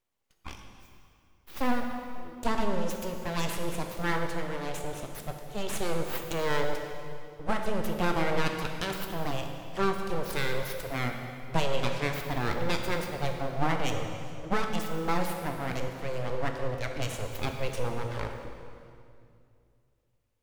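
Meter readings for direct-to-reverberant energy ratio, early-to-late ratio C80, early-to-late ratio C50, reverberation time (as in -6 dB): 3.5 dB, 6.0 dB, 5.0 dB, 2.4 s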